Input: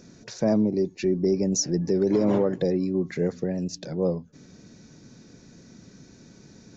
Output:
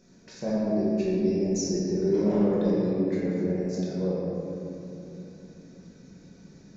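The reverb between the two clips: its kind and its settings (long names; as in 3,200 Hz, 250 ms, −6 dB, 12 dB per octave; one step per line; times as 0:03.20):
rectangular room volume 170 cubic metres, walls hard, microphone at 1.1 metres
level −11.5 dB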